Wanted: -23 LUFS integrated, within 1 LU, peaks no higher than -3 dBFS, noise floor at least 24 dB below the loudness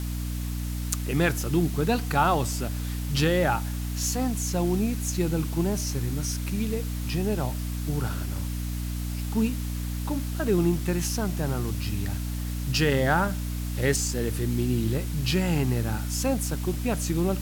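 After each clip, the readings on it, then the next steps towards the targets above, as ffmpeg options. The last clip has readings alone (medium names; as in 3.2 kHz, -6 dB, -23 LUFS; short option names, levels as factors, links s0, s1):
hum 60 Hz; highest harmonic 300 Hz; hum level -28 dBFS; noise floor -31 dBFS; noise floor target -51 dBFS; loudness -27.0 LUFS; peak level -8.5 dBFS; loudness target -23.0 LUFS
-> -af "bandreject=f=60:t=h:w=6,bandreject=f=120:t=h:w=6,bandreject=f=180:t=h:w=6,bandreject=f=240:t=h:w=6,bandreject=f=300:t=h:w=6"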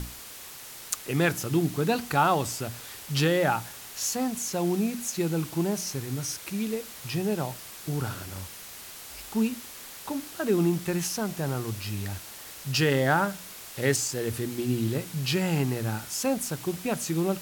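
hum not found; noise floor -44 dBFS; noise floor target -53 dBFS
-> -af "afftdn=nr=9:nf=-44"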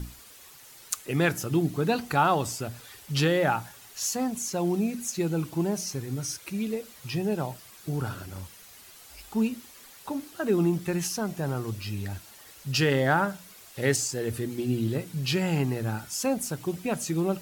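noise floor -50 dBFS; noise floor target -53 dBFS
-> -af "afftdn=nr=6:nf=-50"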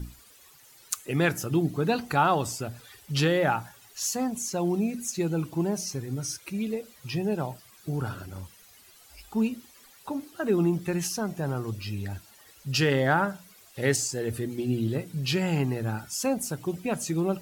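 noise floor -55 dBFS; loudness -28.5 LUFS; peak level -9.5 dBFS; loudness target -23.0 LUFS
-> -af "volume=1.88"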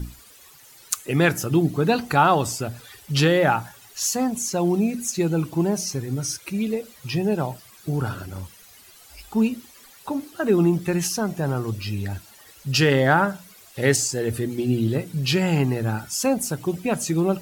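loudness -23.0 LUFS; peak level -4.0 dBFS; noise floor -49 dBFS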